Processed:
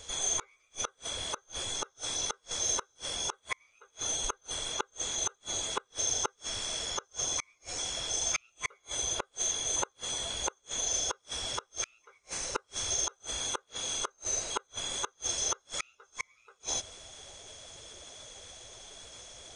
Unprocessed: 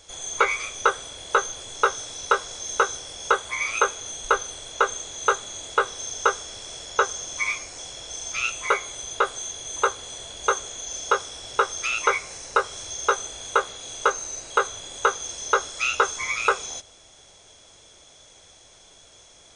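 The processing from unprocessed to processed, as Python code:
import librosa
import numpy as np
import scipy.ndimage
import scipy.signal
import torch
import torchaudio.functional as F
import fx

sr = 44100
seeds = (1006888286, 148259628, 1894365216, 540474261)

y = fx.spec_quant(x, sr, step_db=15)
y = fx.gate_flip(y, sr, shuts_db=-22.0, range_db=-40)
y = y * librosa.db_to_amplitude(3.0)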